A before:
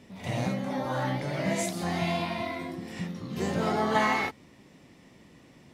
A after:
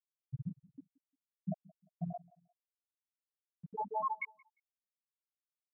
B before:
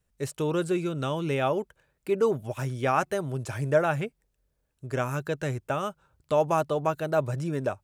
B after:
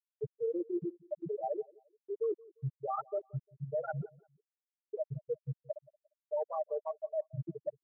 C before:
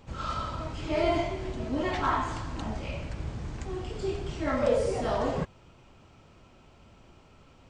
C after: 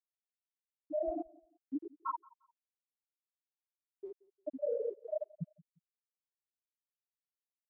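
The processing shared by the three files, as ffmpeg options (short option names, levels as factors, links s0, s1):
-filter_complex "[0:a]lowpass=5300,aemphasis=mode=production:type=cd,bandreject=f=60:t=h:w=6,bandreject=f=120:t=h:w=6,bandreject=f=180:t=h:w=6,bandreject=f=240:t=h:w=6,bandreject=f=300:t=h:w=6,afftfilt=real='re*gte(hypot(re,im),0.355)':imag='im*gte(hypot(re,im),0.355)':win_size=1024:overlap=0.75,tiltshelf=f=1300:g=-8.5,aecho=1:1:6.6:0.87,areverse,acompressor=threshold=0.02:ratio=5,areverse,alimiter=level_in=2.24:limit=0.0631:level=0:latency=1:release=165,volume=0.447,asplit=2[s0][s1];[s1]adelay=175,lowpass=f=1800:p=1,volume=0.0668,asplit=2[s2][s3];[s3]adelay=175,lowpass=f=1800:p=1,volume=0.33[s4];[s0][s2][s4]amix=inputs=3:normalize=0,volume=1.58"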